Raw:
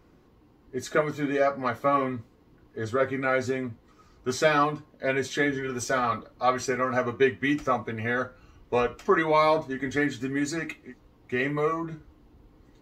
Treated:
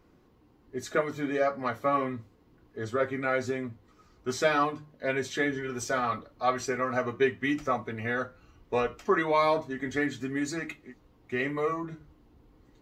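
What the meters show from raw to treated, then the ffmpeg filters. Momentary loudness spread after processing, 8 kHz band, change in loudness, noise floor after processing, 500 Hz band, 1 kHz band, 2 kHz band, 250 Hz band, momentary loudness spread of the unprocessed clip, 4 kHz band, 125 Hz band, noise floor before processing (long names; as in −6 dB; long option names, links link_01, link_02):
13 LU, −3.0 dB, −3.0 dB, −62 dBFS, −3.0 dB, −3.0 dB, −3.0 dB, −3.0 dB, 13 LU, −3.0 dB, −4.0 dB, −59 dBFS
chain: -af "bandreject=frequency=50:width_type=h:width=6,bandreject=frequency=100:width_type=h:width=6,bandreject=frequency=150:width_type=h:width=6,volume=-3dB"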